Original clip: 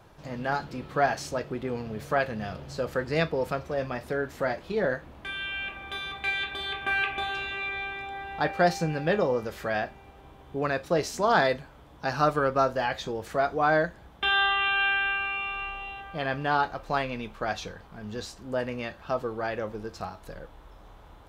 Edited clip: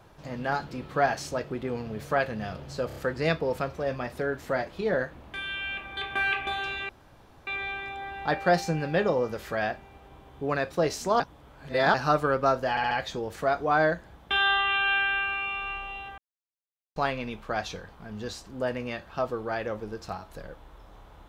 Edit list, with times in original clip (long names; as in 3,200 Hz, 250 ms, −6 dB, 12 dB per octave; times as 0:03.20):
0:02.87: stutter 0.03 s, 4 plays
0:05.88–0:06.68: remove
0:07.60: splice in room tone 0.58 s
0:11.33–0:12.07: reverse
0:12.83: stutter 0.07 s, 4 plays
0:16.10–0:16.88: silence